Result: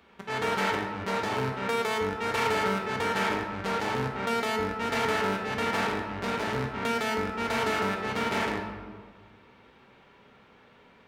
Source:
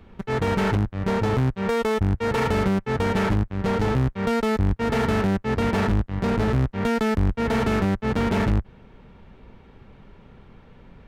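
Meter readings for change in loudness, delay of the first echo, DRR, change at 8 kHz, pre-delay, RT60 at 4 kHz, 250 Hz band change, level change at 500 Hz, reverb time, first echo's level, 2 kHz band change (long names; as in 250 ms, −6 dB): −5.5 dB, no echo audible, 2.0 dB, +1.0 dB, 9 ms, 0.90 s, −10.5 dB, −5.5 dB, 1.6 s, no echo audible, +0.5 dB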